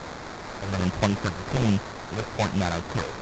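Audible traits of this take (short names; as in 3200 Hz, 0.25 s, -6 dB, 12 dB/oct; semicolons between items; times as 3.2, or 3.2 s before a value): a quantiser's noise floor 6-bit, dither triangular; phasing stages 8, 1.2 Hz, lowest notch 200–3700 Hz; aliases and images of a low sample rate 2900 Hz, jitter 20%; A-law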